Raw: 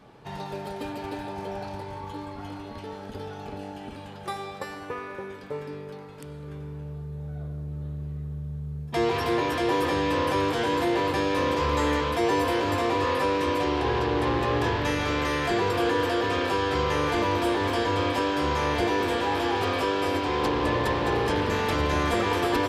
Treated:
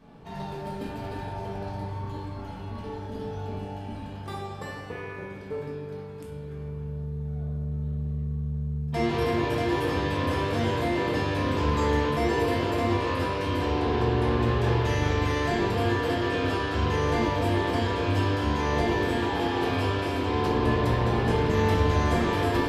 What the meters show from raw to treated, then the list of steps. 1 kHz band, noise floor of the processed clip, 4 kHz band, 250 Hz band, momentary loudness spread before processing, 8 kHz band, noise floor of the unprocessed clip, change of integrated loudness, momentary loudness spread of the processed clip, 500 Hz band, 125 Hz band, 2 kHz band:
−2.5 dB, −38 dBFS, −3.0 dB, +0.5 dB, 14 LU, −3.5 dB, −40 dBFS, −1.0 dB, 13 LU, −1.0 dB, +5.5 dB, −2.0 dB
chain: low-shelf EQ 280 Hz +8 dB
rectangular room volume 260 cubic metres, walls mixed, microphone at 1.6 metres
level −7.5 dB

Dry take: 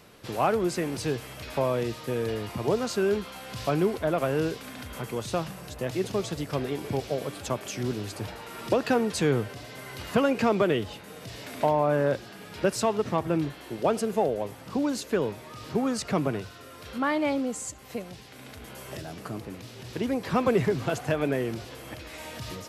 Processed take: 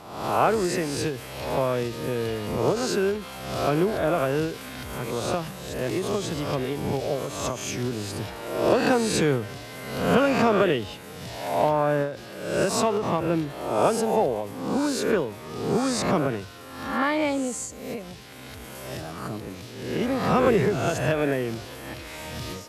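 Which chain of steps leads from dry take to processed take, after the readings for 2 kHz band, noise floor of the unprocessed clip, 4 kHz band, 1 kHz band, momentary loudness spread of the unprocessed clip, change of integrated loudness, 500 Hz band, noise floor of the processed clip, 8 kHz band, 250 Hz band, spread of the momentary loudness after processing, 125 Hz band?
+4.5 dB, −46 dBFS, +4.5 dB, +4.5 dB, 15 LU, +3.0 dB, +3.0 dB, −41 dBFS, +5.0 dB, +2.5 dB, 14 LU, +2.5 dB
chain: peak hold with a rise ahead of every peak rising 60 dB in 0.84 s
every ending faded ahead of time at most 110 dB per second
level +1 dB

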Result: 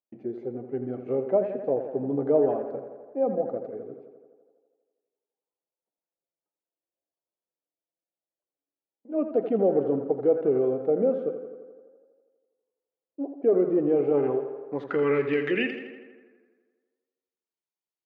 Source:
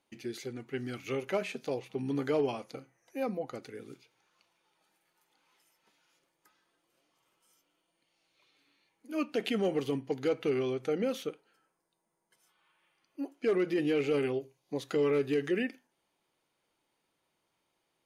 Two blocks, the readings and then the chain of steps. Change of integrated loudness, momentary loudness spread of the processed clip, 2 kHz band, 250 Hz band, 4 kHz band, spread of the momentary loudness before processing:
+6.5 dB, 14 LU, +3.5 dB, +5.0 dB, can't be measured, 13 LU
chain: noise gate −58 dBFS, range −28 dB
high-pass filter 110 Hz
low-pass filter sweep 630 Hz → 6,300 Hz, 0:13.84–0:16.68
tape delay 83 ms, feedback 74%, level −9 dB, low-pass 3,300 Hz
level +3 dB

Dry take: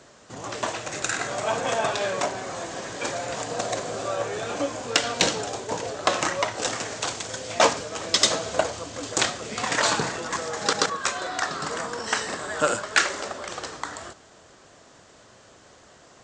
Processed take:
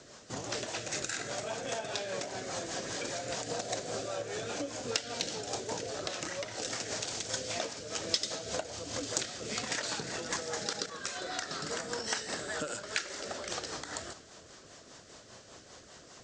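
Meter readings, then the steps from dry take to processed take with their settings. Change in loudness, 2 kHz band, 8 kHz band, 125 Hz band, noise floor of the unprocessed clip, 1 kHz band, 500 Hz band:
−9.5 dB, −11.5 dB, −7.5 dB, −7.5 dB, −53 dBFS, −13.5 dB, −10.0 dB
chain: dynamic equaliser 1,100 Hz, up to −7 dB, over −45 dBFS, Q 5
downward compressor 6 to 1, threshold −32 dBFS, peak gain reduction 16.5 dB
parametric band 5,200 Hz +6 dB 1 octave
rotating-speaker cabinet horn 5 Hz

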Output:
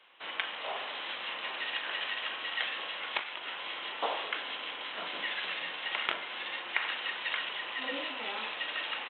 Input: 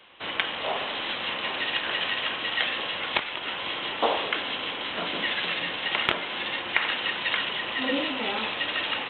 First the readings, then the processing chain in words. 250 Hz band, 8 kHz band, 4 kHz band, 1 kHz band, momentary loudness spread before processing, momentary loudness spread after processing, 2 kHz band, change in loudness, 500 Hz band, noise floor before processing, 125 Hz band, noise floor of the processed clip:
−15.0 dB, can't be measured, −8.0 dB, −7.5 dB, 4 LU, 4 LU, −6.5 dB, −7.5 dB, −10.0 dB, −34 dBFS, below −15 dB, −42 dBFS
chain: high-pass filter 950 Hz 6 dB per octave
high-shelf EQ 3,900 Hz −9.5 dB
double-tracking delay 40 ms −13 dB
level −4 dB

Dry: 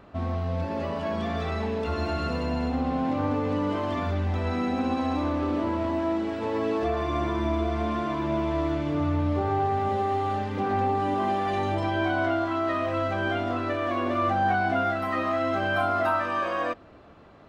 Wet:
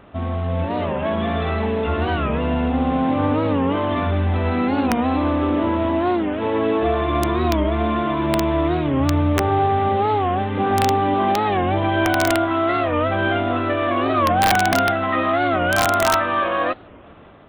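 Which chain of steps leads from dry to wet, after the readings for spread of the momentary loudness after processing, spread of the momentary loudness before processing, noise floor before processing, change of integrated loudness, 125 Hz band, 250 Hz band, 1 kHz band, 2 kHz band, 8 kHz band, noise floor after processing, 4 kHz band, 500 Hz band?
5 LU, 4 LU, −49 dBFS, +7.5 dB, +7.0 dB, +7.0 dB, +7.5 dB, +7.5 dB, can't be measured, −42 dBFS, +10.0 dB, +7.0 dB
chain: variable-slope delta modulation 32 kbit/s
automatic gain control gain up to 3 dB
downsampling to 8,000 Hz
wrap-around overflow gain 13 dB
wow of a warped record 45 rpm, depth 160 cents
level +4.5 dB

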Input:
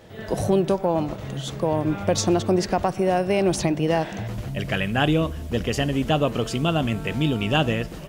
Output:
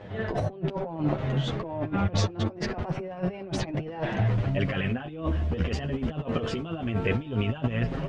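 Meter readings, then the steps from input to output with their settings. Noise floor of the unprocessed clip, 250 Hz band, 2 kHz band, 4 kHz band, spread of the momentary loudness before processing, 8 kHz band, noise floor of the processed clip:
−36 dBFS, −6.5 dB, −6.5 dB, −9.0 dB, 7 LU, −13.0 dB, −41 dBFS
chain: low-pass filter 2,600 Hz 12 dB per octave
compressor whose output falls as the input rises −27 dBFS, ratio −0.5
multi-voice chorus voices 2, 0.25 Hz, delay 10 ms, depth 2.8 ms
level +2.5 dB

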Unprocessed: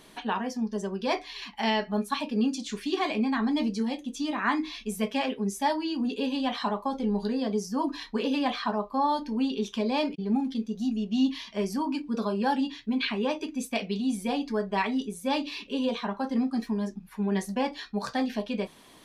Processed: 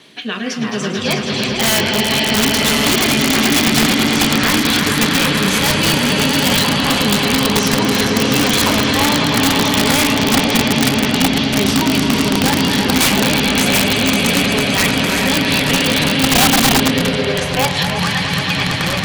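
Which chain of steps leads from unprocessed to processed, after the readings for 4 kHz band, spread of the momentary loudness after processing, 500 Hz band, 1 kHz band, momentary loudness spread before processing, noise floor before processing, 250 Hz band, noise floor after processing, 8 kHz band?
+22.5 dB, 4 LU, +12.0 dB, +11.5 dB, 5 LU, −52 dBFS, +11.5 dB, −21 dBFS, +26.5 dB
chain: rotating-speaker cabinet horn 1 Hz
in parallel at 0 dB: brickwall limiter −24 dBFS, peak gain reduction 11.5 dB
on the sum: meter weighting curve D
surface crackle 32 per second −41 dBFS
on a send: echo that builds up and dies away 109 ms, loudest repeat 5, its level −7 dB
on the sum: high-pass filter sweep 100 Hz → 1,100 Hz, 0:15.69–0:18.12
wrap-around overflow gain 11 dB
delay with pitch and tempo change per echo 202 ms, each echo −7 semitones, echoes 3, each echo −6 dB
one half of a high-frequency compander decoder only
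level +4 dB

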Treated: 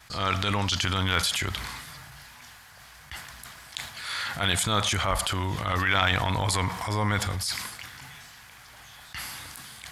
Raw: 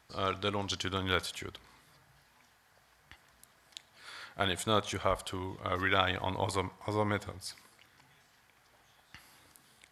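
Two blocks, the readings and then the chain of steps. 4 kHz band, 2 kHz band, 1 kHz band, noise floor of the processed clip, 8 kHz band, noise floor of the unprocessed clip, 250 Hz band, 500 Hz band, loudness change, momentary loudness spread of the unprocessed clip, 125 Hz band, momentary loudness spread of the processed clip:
+9.5 dB, +8.5 dB, +6.0 dB, −50 dBFS, +13.5 dB, −66 dBFS, +5.5 dB, +0.5 dB, +6.5 dB, 18 LU, +10.5 dB, 19 LU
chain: downward expander −53 dBFS
parametric band 410 Hz −11 dB 1.9 octaves
transient designer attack −9 dB, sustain +5 dB
envelope flattener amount 50%
level +8.5 dB

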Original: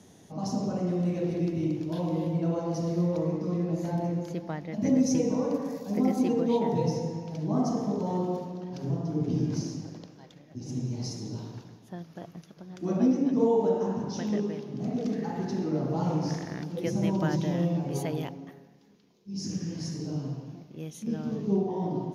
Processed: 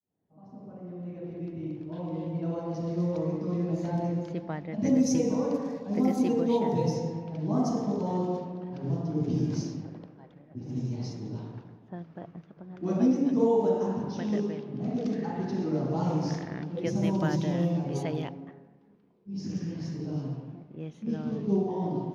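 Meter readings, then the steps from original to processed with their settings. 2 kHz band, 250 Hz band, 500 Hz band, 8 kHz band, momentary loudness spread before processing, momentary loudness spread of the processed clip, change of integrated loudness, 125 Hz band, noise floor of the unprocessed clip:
−0.5 dB, −0.5 dB, −0.5 dB, −2.5 dB, 16 LU, 17 LU, −0.5 dB, −1.0 dB, −54 dBFS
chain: fade in at the beginning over 3.81 s
low-pass that shuts in the quiet parts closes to 1,400 Hz, open at −21.5 dBFS

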